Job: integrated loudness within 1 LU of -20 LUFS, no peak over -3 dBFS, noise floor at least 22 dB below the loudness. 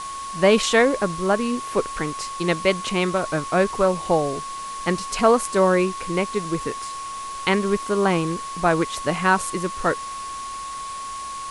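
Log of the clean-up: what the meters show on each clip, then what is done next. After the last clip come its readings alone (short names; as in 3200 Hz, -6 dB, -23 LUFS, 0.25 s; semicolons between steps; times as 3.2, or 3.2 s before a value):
steady tone 1100 Hz; tone level -30 dBFS; noise floor -32 dBFS; noise floor target -45 dBFS; loudness -22.5 LUFS; peak -3.5 dBFS; loudness target -20.0 LUFS
-> notch 1100 Hz, Q 30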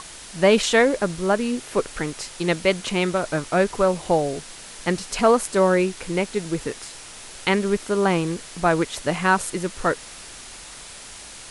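steady tone none; noise floor -41 dBFS; noise floor target -44 dBFS
-> denoiser 6 dB, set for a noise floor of -41 dBFS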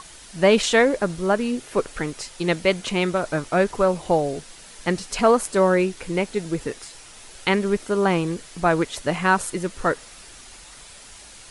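noise floor -45 dBFS; loudness -22.5 LUFS; peak -3.5 dBFS; loudness target -20.0 LUFS
-> gain +2.5 dB; limiter -3 dBFS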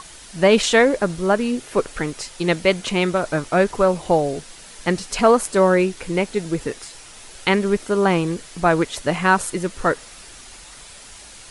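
loudness -20.0 LUFS; peak -3.0 dBFS; noise floor -42 dBFS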